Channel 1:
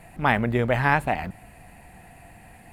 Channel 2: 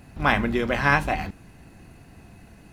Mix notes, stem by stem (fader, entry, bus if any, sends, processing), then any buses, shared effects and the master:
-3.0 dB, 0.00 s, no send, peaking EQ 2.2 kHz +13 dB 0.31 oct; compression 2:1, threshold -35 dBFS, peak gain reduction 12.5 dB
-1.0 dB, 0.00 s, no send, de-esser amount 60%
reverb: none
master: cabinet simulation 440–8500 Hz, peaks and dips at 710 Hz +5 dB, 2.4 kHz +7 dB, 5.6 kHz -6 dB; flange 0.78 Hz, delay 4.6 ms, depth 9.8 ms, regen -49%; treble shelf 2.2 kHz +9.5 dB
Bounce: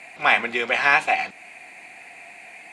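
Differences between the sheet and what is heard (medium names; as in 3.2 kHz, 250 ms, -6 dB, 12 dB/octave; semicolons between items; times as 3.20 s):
stem 2: polarity flipped; master: missing flange 0.78 Hz, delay 4.6 ms, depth 9.8 ms, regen -49%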